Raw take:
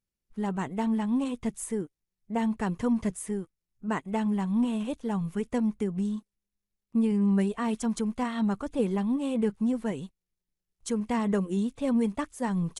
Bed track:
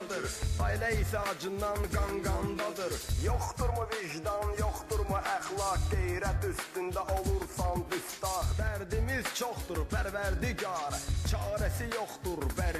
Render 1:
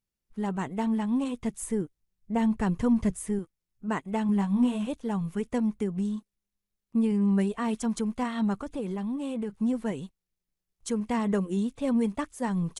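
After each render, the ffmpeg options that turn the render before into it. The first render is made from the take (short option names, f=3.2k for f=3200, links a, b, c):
-filter_complex "[0:a]asettb=1/sr,asplit=3[a][b][c];[a]atrim=end=1.624[d];[b]atrim=start=1.62:end=3.39,asetpts=PTS-STARTPTS,afade=t=in:d=0.004:c=qsin,afade=t=out:st=1.766:d=0.004:c=qsin,lowshelf=f=140:g=10[e];[c]atrim=start=3.386[f];[d][e]acrossfade=d=0.004:c1=hsin:c2=qsin[g];[g][f]acrossfade=d=0.004:c1=qsin:c2=hsin,asettb=1/sr,asplit=3[h][i][j];[h]atrim=end=4.274[k];[i]atrim=start=4.27:end=4.87,asetpts=PTS-STARTPTS,afade=t=in:d=0.004:c=qsin,afade=t=out:st=0.596:d=0.004:c=qsin,asplit=2[l][m];[m]adelay=20,volume=-4.5dB[n];[l][n]amix=inputs=2:normalize=0,atrim=end_sample=26460[o];[j]atrim=start=4.866[p];[k][o]acrossfade=d=0.004:c1=hsin:c2=qsin[q];[q][p]acrossfade=d=0.004:c1=qsin:c2=hsin,asettb=1/sr,asplit=3[r][s][t];[r]atrim=end=8.624[u];[s]atrim=start=8.62:end=9.61,asetpts=PTS-STARTPTS,afade=t=in:d=0.004:c=qsin,afade=t=out:st=0.986:d=0.004:c=qsin,acompressor=threshold=-29dB:ratio=4:attack=3.2:release=140:knee=1:detection=peak[v];[t]atrim=start=9.606[w];[u][v]acrossfade=d=0.004:c1=hsin:c2=qsin[x];[x][w]acrossfade=d=0.004:c1=qsin:c2=hsin"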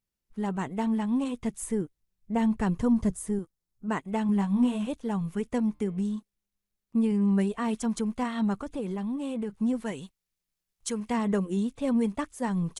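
-filter_complex "[0:a]asettb=1/sr,asplit=3[a][b][c];[a]atrim=end=2.804[d];[b]atrim=start=2.8:end=3.88,asetpts=PTS-STARTPTS,afade=t=in:d=0.004:c=qsin,afade=t=out:st=1.076:d=0.004:c=qsin,equalizer=f=2.4k:w=1.5:g=-7[e];[c]atrim=start=3.876[f];[d][e]acrossfade=d=0.004:c1=hsin:c2=qsin[g];[g][f]acrossfade=d=0.004:c1=qsin:c2=hsin,asettb=1/sr,asplit=3[h][i][j];[h]atrim=end=5.624[k];[i]atrim=start=5.62:end=6.13,asetpts=PTS-STARTPTS,afade=t=in:d=0.004:c=qsin,afade=t=out:st=0.506:d=0.004:c=qsin,bandreject=f=149.7:t=h:w=4,bandreject=f=299.4:t=h:w=4,bandreject=f=449.1:t=h:w=4,bandreject=f=598.8:t=h:w=4,bandreject=f=748.5:t=h:w=4,bandreject=f=898.2:t=h:w=4,bandreject=f=1.0479k:t=h:w=4,bandreject=f=1.1976k:t=h:w=4,bandreject=f=1.3473k:t=h:w=4,bandreject=f=1.497k:t=h:w=4,bandreject=f=1.6467k:t=h:w=4,bandreject=f=1.7964k:t=h:w=4,bandreject=f=1.9461k:t=h:w=4,bandreject=f=2.0958k:t=h:w=4,bandreject=f=2.2455k:t=h:w=4,bandreject=f=2.3952k:t=h:w=4,bandreject=f=2.5449k:t=h:w=4,bandreject=f=2.6946k:t=h:w=4,bandreject=f=2.8443k:t=h:w=4,bandreject=f=2.994k:t=h:w=4,bandreject=f=3.1437k:t=h:w=4,bandreject=f=3.2934k:t=h:w=4,bandreject=f=3.4431k:t=h:w=4,bandreject=f=3.5928k:t=h:w=4,bandreject=f=3.7425k:t=h:w=4,bandreject=f=3.8922k:t=h:w=4,bandreject=f=4.0419k:t=h:w=4,bandreject=f=4.1916k:t=h:w=4,bandreject=f=4.3413k:t=h:w=4,bandreject=f=4.491k:t=h:w=4,bandreject=f=4.6407k:t=h:w=4,bandreject=f=4.7904k:t=h:w=4,bandreject=f=4.9401k:t=h:w=4,bandreject=f=5.0898k:t=h:w=4,bandreject=f=5.2395k:t=h:w=4[l];[j]atrim=start=6.126[m];[k][l]acrossfade=d=0.004:c1=hsin:c2=qsin[n];[n][m]acrossfade=d=0.004:c1=qsin:c2=hsin,asettb=1/sr,asplit=3[o][p][q];[o]atrim=end=9.804[r];[p]atrim=start=9.8:end=11.11,asetpts=PTS-STARTPTS,afade=t=in:d=0.004:c=qsin,afade=t=out:st=1.306:d=0.004:c=qsin,tiltshelf=f=970:g=-4[s];[q]atrim=start=11.106[t];[r][s]acrossfade=d=0.004:c1=hsin:c2=qsin[u];[u][t]acrossfade=d=0.004:c1=qsin:c2=hsin"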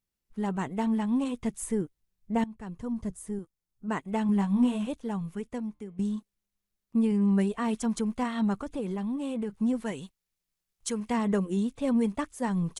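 -filter_complex "[0:a]asplit=3[a][b][c];[a]atrim=end=2.44,asetpts=PTS-STARTPTS,afade=t=out:st=2.436:d=0.004:c=hsin:silence=0.105925[d];[b]atrim=start=2.44:end=5.99,asetpts=PTS-STARTPTS,afade=t=in:d=1.78:silence=0.105925,afade=t=out:st=2.28:d=1.27:silence=0.177828[e];[c]atrim=start=5.99,asetpts=PTS-STARTPTS,afade=t=in:d=0.004:c=hsin:silence=0.177828[f];[d][e][f]concat=n=3:v=0:a=1"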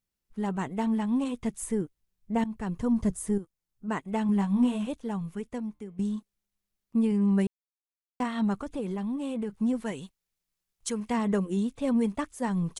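-filter_complex "[0:a]asettb=1/sr,asplit=3[a][b][c];[a]atrim=end=2.454[d];[b]atrim=start=2.45:end=3.38,asetpts=PTS-STARTPTS,afade=t=in:d=0.004:c=qsin,afade=t=out:st=0.926:d=0.004:c=qsin,acontrast=86[e];[c]atrim=start=3.376[f];[d][e]acrossfade=d=0.004:c1=hsin:c2=qsin[g];[g][f]acrossfade=d=0.004:c1=qsin:c2=hsin,asplit=3[h][i][j];[h]atrim=end=7.47,asetpts=PTS-STARTPTS,afade=t=out:st=7.466:d=0.004:c=hsin[k];[i]atrim=start=7.47:end=8.2,asetpts=PTS-STARTPTS,volume=0[l];[j]atrim=start=8.2,asetpts=PTS-STARTPTS,afade=t=in:d=0.004:c=hsin[m];[k][l][m]concat=n=3:v=0:a=1"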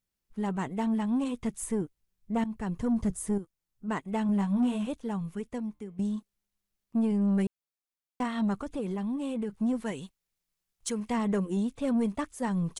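-af "asoftclip=type=tanh:threshold=-20dB"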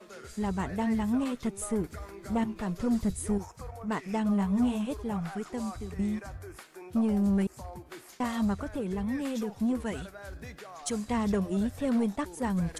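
-filter_complex "[1:a]volume=-11dB[a];[0:a][a]amix=inputs=2:normalize=0"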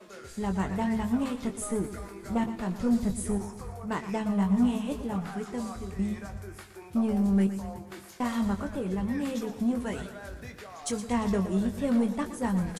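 -filter_complex "[0:a]asplit=2[a][b];[b]adelay=21,volume=-7.5dB[c];[a][c]amix=inputs=2:normalize=0,aecho=1:1:117|234|351|468|585|702:0.251|0.138|0.076|0.0418|0.023|0.0126"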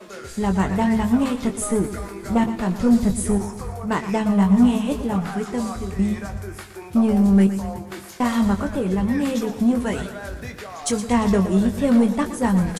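-af "volume=9dB"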